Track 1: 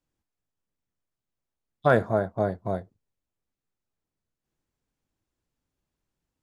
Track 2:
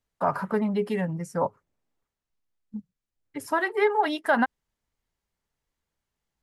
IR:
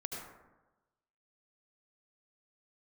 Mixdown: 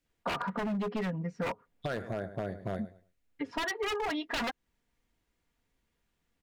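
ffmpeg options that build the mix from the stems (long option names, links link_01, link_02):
-filter_complex "[0:a]equalizer=frequency=125:width_type=o:width=1:gain=-3,equalizer=frequency=1000:width_type=o:width=1:gain=-11,equalizer=frequency=2000:width_type=o:width=1:gain=7,alimiter=limit=-19dB:level=0:latency=1:release=222,volume=2.5dB,asplit=2[link_01][link_02];[link_02]volume=-16dB[link_03];[1:a]lowpass=frequency=3900:width=0.5412,lowpass=frequency=3900:width=1.3066,aecho=1:1:4.2:0.56,adelay=50,volume=1.5dB[link_04];[link_03]aecho=0:1:107|214|321:1|0.18|0.0324[link_05];[link_01][link_04][link_05]amix=inputs=3:normalize=0,aeval=exprs='0.1*(abs(mod(val(0)/0.1+3,4)-2)-1)':channel_layout=same,acompressor=threshold=-33dB:ratio=3"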